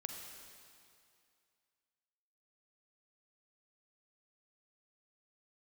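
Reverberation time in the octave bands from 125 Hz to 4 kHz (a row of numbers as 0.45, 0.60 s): 2.2, 2.3, 2.4, 2.4, 2.3, 2.3 s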